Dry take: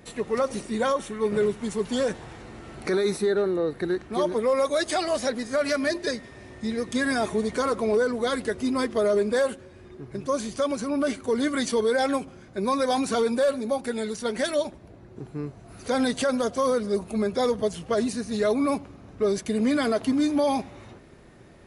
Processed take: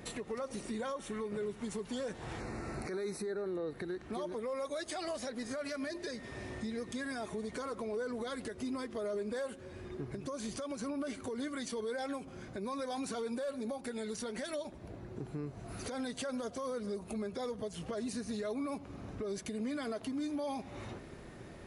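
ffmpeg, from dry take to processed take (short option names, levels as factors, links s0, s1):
-filter_complex "[0:a]asettb=1/sr,asplit=3[s0][s1][s2];[s0]atrim=end=2.404[s3];[s1]atrim=start=2.4:end=3.46,asetpts=PTS-STARTPTS,afade=t=in:d=0.004:c=qsin,afade=t=out:st=1.056:d=0.004:c=qsin,asuperstop=centerf=3200:order=4:qfactor=2.3[s4];[s2]atrim=start=3.456[s5];[s3][s4]acrossfade=d=0.004:c1=hsin:c2=qsin[s6];[s6][s5]acrossfade=d=0.004:c1=qsin:c2=hsin,acompressor=threshold=0.02:ratio=6,alimiter=level_in=2.37:limit=0.0631:level=0:latency=1:release=146,volume=0.422,volume=1.12"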